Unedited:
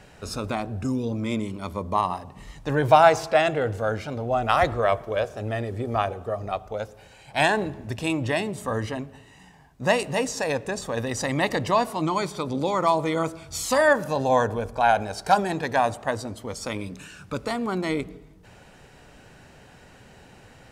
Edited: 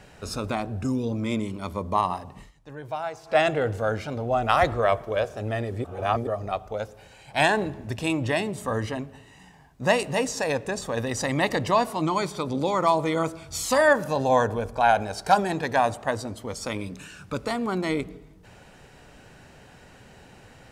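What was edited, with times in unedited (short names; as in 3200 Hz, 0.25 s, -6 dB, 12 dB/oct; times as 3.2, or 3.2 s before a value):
2.38–3.38 dip -16.5 dB, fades 0.13 s
5.84–6.27 reverse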